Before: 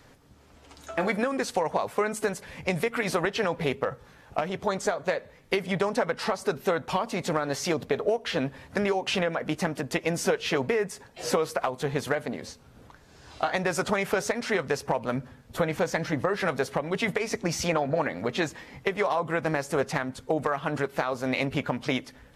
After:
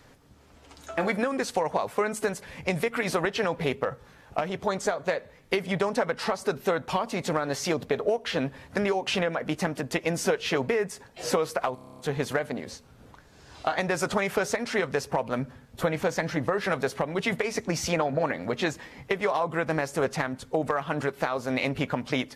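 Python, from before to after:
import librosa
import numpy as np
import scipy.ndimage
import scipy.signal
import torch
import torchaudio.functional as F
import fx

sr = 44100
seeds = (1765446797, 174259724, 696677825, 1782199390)

y = fx.edit(x, sr, fx.stutter(start_s=11.75, slice_s=0.03, count=9), tone=tone)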